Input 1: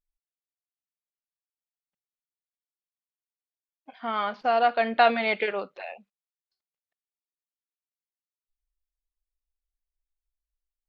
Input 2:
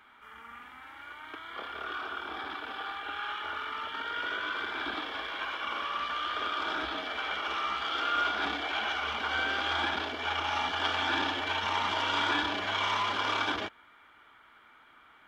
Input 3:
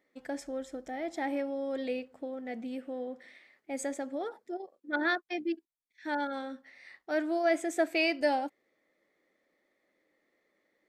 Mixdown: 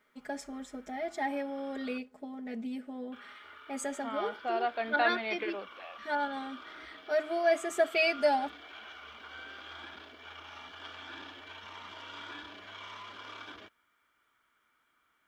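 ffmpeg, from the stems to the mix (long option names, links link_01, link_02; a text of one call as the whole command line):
ffmpeg -i stem1.wav -i stem2.wav -i stem3.wav -filter_complex "[0:a]volume=-10dB[link_01];[1:a]equalizer=frequency=830:width_type=o:width=0.28:gain=-7.5,acrusher=bits=10:mix=0:aa=0.000001,volume=-15.5dB,asplit=3[link_02][link_03][link_04];[link_02]atrim=end=1.98,asetpts=PTS-STARTPTS,afade=type=out:start_time=1.976:duration=0.004:curve=hsin[link_05];[link_03]atrim=start=1.98:end=3.12,asetpts=PTS-STARTPTS,volume=0[link_06];[link_04]atrim=start=3.12,asetpts=PTS-STARTPTS,afade=type=in:duration=0.004:curve=hsin[link_07];[link_05][link_06][link_07]concat=n=3:v=0:a=1[link_08];[2:a]aecho=1:1:4.8:1,volume=-2.5dB[link_09];[link_01][link_08][link_09]amix=inputs=3:normalize=0" out.wav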